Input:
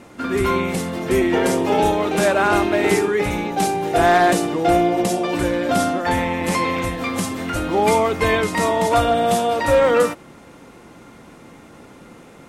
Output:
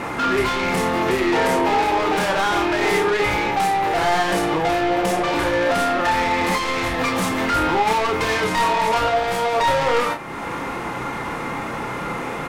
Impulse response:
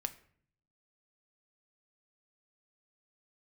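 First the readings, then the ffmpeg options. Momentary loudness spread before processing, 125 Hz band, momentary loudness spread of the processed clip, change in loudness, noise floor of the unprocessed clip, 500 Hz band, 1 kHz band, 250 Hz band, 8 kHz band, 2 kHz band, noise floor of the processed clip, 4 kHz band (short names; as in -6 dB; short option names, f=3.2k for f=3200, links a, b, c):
7 LU, -3.5 dB, 9 LU, -1.5 dB, -44 dBFS, -3.0 dB, +1.0 dB, -3.0 dB, -3.0 dB, +2.0 dB, -28 dBFS, +3.0 dB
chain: -filter_complex "[0:a]equalizer=f=1k:t=o:w=1:g=9,equalizer=f=2k:t=o:w=1:g=6,equalizer=f=8k:t=o:w=1:g=-3,acompressor=threshold=-33dB:ratio=2,asoftclip=type=tanh:threshold=-30.5dB,asplit=2[a][b];[b]adelay=32,volume=-5.5dB[c];[a][c]amix=inputs=2:normalize=0,asplit=2[d][e];[1:a]atrim=start_sample=2205[f];[e][f]afir=irnorm=-1:irlink=0,volume=6dB[g];[d][g]amix=inputs=2:normalize=0,volume=3.5dB"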